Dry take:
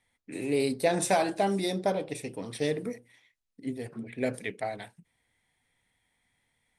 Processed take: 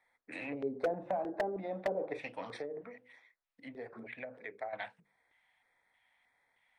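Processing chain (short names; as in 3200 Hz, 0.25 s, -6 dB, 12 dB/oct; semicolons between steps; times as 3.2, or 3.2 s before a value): notches 50/100/150/200/250/300/350/400/450/500 Hz; treble ducked by the level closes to 350 Hz, closed at -24 dBFS; three-band isolator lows -19 dB, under 430 Hz, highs -18 dB, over 3300 Hz; 2.57–4.73 compressor 2.5:1, threshold -48 dBFS, peak gain reduction 12.5 dB; LFO notch square 1.6 Hz 400–2900 Hz; wavefolder -28.5 dBFS; gain +5 dB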